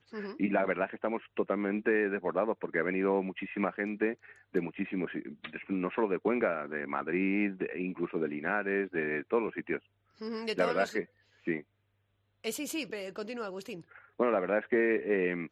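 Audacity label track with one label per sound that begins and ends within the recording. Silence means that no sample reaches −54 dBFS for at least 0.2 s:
10.180000	11.060000	sound
11.390000	11.620000	sound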